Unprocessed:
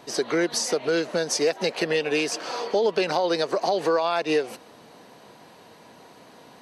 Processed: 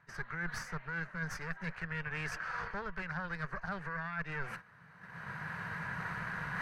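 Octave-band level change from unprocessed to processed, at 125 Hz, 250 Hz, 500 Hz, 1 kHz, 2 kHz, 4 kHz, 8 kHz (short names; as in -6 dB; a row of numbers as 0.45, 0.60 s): -0.5, -15.5, -26.5, -12.5, -4.5, -23.0, -23.5 dB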